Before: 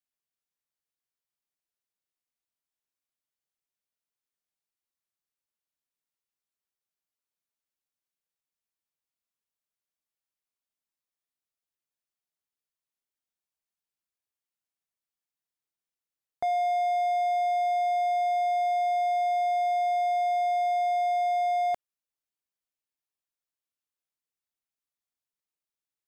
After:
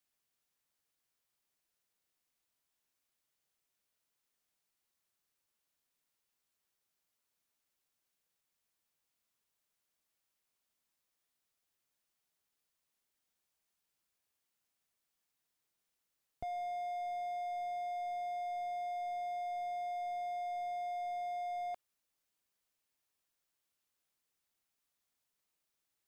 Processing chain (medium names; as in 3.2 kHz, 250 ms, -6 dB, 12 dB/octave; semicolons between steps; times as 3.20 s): slew-rate limiter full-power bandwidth 3.9 Hz; trim +7 dB